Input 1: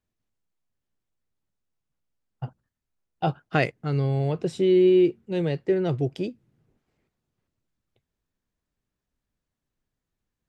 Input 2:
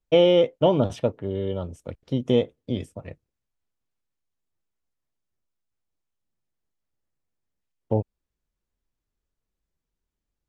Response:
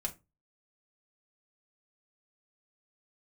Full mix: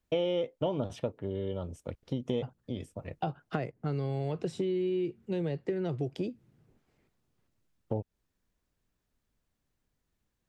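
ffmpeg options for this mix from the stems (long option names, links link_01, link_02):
-filter_complex "[0:a]acrossover=split=200|1200[link_01][link_02][link_03];[link_01]acompressor=threshold=-31dB:ratio=4[link_04];[link_02]acompressor=threshold=-26dB:ratio=4[link_05];[link_03]acompressor=threshold=-45dB:ratio=4[link_06];[link_04][link_05][link_06]amix=inputs=3:normalize=0,volume=2dB,asplit=2[link_07][link_08];[1:a]volume=-2.5dB[link_09];[link_08]apad=whole_len=462171[link_10];[link_09][link_10]sidechaincompress=threshold=-36dB:ratio=8:attack=25:release=751[link_11];[link_07][link_11]amix=inputs=2:normalize=0,acompressor=threshold=-32dB:ratio=2.5"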